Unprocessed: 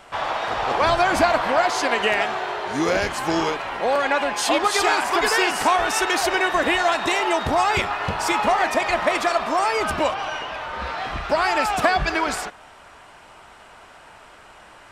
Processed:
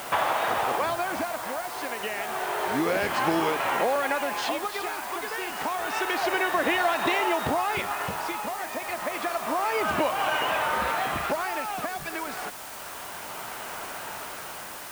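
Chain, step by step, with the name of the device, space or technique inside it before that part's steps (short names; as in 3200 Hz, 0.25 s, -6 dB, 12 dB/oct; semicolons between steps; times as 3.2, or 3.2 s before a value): medium wave at night (BPF 120–3500 Hz; compressor, threshold -31 dBFS, peak gain reduction 17 dB; tremolo 0.29 Hz, depth 65%; whine 9000 Hz -63 dBFS; white noise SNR 14 dB); gain +9 dB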